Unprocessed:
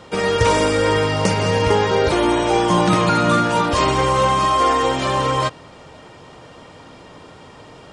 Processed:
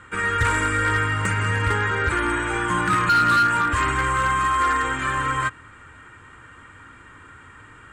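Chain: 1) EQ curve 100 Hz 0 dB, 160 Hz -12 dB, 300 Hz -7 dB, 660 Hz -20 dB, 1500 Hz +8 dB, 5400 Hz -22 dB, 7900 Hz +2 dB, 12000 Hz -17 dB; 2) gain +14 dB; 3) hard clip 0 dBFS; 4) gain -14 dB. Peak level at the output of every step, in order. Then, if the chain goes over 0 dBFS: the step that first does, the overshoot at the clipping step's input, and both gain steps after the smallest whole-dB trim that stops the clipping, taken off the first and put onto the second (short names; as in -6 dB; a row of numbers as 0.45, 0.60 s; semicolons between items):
-6.0, +8.0, 0.0, -14.0 dBFS; step 2, 8.0 dB; step 2 +6 dB, step 4 -6 dB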